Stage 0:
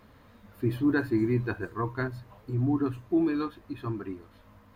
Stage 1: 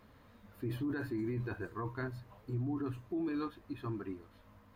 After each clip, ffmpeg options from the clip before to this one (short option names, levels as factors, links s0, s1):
-af "alimiter=level_in=1.12:limit=0.0631:level=0:latency=1:release=13,volume=0.891,volume=0.562"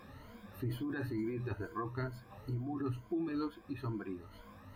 -af "afftfilt=real='re*pow(10,14/40*sin(2*PI*(1.8*log(max(b,1)*sr/1024/100)/log(2)-(2.2)*(pts-256)/sr)))':imag='im*pow(10,14/40*sin(2*PI*(1.8*log(max(b,1)*sr/1024/100)/log(2)-(2.2)*(pts-256)/sr)))':win_size=1024:overlap=0.75,acompressor=threshold=0.002:ratio=1.5,volume=1.88"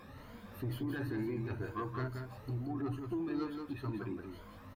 -filter_complex "[0:a]asoftclip=type=tanh:threshold=0.0266,asplit=2[s0][s1];[s1]aecho=0:1:176:0.501[s2];[s0][s2]amix=inputs=2:normalize=0,volume=1.12"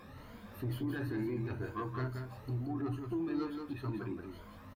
-filter_complex "[0:a]asplit=2[s0][s1];[s1]adelay=24,volume=0.224[s2];[s0][s2]amix=inputs=2:normalize=0"